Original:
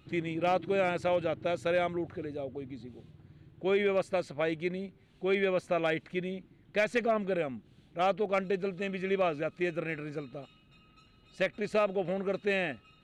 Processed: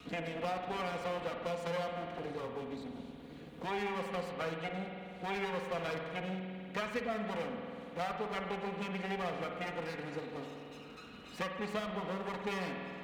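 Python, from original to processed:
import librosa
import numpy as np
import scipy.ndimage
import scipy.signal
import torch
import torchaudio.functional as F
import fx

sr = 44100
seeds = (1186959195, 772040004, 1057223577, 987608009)

y = fx.lower_of_two(x, sr, delay_ms=4.2)
y = scipy.signal.sosfilt(scipy.signal.butter(2, 58.0, 'highpass', fs=sr, output='sos'), y)
y = fx.rev_spring(y, sr, rt60_s=1.5, pass_ms=(48,), chirp_ms=50, drr_db=3.5)
y = fx.band_squash(y, sr, depth_pct=70)
y = y * librosa.db_to_amplitude(-6.0)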